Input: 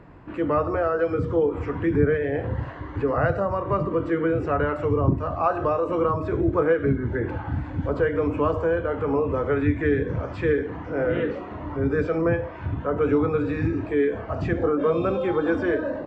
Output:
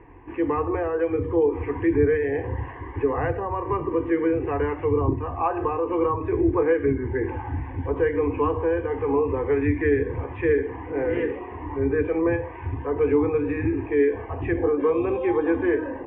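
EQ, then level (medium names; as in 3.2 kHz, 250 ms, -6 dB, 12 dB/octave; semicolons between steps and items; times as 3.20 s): low-pass 2.8 kHz 24 dB/octave; hum notches 60/120/180/240/300 Hz; static phaser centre 910 Hz, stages 8; +3.0 dB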